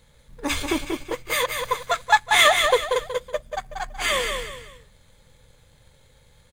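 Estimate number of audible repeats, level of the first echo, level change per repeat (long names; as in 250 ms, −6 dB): 3, −5.5 dB, −9.5 dB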